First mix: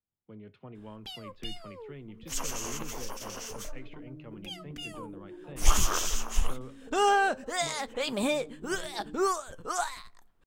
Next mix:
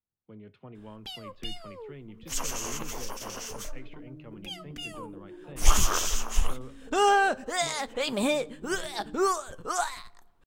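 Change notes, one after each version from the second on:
first sound: send +11.0 dB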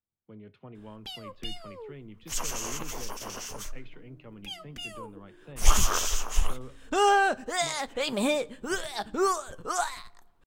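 second sound −11.5 dB

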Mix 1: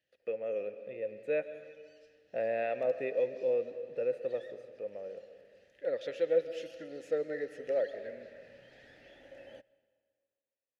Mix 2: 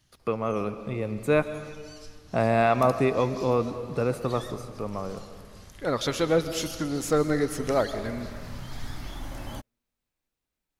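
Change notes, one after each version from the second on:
background: send off
master: remove formant filter e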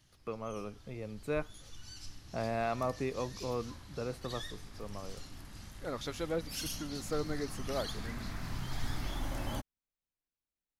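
speech −10.0 dB
reverb: off

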